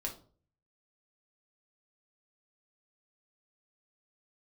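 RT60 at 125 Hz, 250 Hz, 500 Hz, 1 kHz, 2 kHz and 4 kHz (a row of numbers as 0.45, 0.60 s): 0.75, 0.50, 0.50, 0.40, 0.30, 0.30 s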